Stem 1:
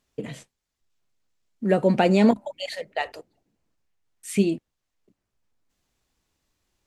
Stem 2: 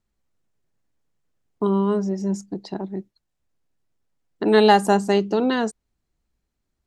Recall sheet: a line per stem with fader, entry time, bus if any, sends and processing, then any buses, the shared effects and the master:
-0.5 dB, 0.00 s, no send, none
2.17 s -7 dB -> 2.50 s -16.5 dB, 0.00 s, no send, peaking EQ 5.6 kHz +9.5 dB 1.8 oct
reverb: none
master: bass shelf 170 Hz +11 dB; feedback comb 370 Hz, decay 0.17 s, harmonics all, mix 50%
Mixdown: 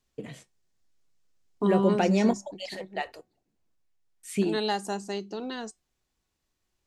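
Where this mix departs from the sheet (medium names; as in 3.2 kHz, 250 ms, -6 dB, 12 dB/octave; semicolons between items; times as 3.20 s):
stem 2 -7.0 dB -> 0.0 dB; master: missing bass shelf 170 Hz +11 dB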